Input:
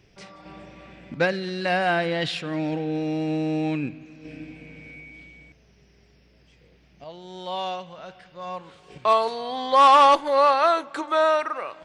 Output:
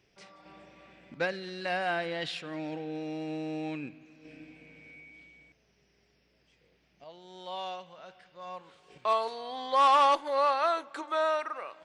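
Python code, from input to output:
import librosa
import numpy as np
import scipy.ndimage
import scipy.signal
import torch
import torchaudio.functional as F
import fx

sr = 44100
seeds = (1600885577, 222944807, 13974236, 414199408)

y = fx.low_shelf(x, sr, hz=200.0, db=-10.0)
y = y * 10.0 ** (-7.5 / 20.0)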